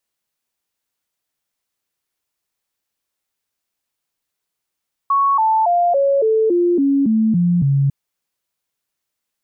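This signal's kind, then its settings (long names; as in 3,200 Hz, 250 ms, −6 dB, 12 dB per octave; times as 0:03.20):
stepped sweep 1,110 Hz down, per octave 3, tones 10, 0.28 s, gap 0.00 s −12 dBFS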